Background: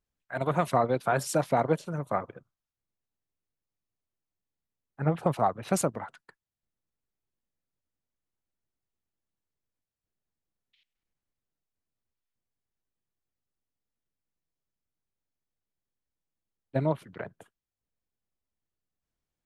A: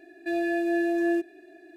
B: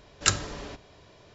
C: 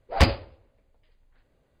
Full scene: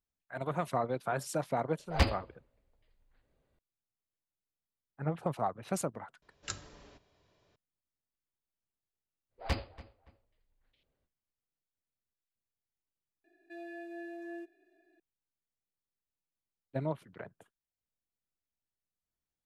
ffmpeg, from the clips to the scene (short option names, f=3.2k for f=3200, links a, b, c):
-filter_complex "[3:a]asplit=2[a][b];[0:a]volume=-7.5dB[c];[b]asplit=2[d][e];[e]adelay=285,lowpass=f=2.9k:p=1,volume=-18dB,asplit=2[f][g];[g]adelay=285,lowpass=f=2.9k:p=1,volume=0.27[h];[d][f][h]amix=inputs=3:normalize=0[i];[1:a]bass=f=250:g=-10,treble=f=4k:g=-4[j];[a]atrim=end=1.8,asetpts=PTS-STARTPTS,volume=-8.5dB,afade=t=in:d=0.004:c=hsin,afade=t=out:st=1.796:d=0.004:c=hsin,adelay=1790[k];[2:a]atrim=end=1.34,asetpts=PTS-STARTPTS,volume=-17dB,afade=t=in:d=0.004:c=hsin,afade=t=out:st=1.336:d=0.004:c=hsin,adelay=6220[l];[i]atrim=end=1.8,asetpts=PTS-STARTPTS,volume=-15dB,afade=t=in:d=0.05,afade=t=out:st=1.75:d=0.05,adelay=9290[m];[j]atrim=end=1.76,asetpts=PTS-STARTPTS,volume=-17dB,afade=t=in:d=0.004:c=hsin,afade=t=out:st=1.756:d=0.004:c=hsin,adelay=13240[n];[c][k][l][m][n]amix=inputs=5:normalize=0"